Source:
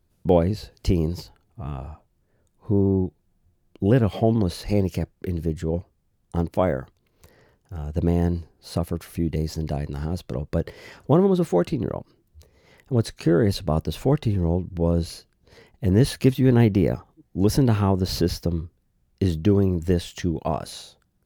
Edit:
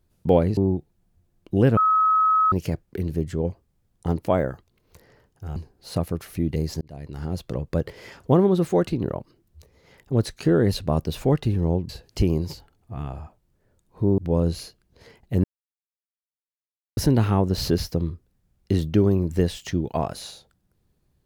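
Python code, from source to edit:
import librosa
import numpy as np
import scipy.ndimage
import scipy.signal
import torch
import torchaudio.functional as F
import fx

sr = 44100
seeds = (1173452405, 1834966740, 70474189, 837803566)

y = fx.edit(x, sr, fx.move(start_s=0.57, length_s=2.29, to_s=14.69),
    fx.bleep(start_s=4.06, length_s=0.75, hz=1280.0, db=-15.5),
    fx.cut(start_s=7.85, length_s=0.51),
    fx.fade_in_span(start_s=9.61, length_s=0.57),
    fx.silence(start_s=15.95, length_s=1.53), tone=tone)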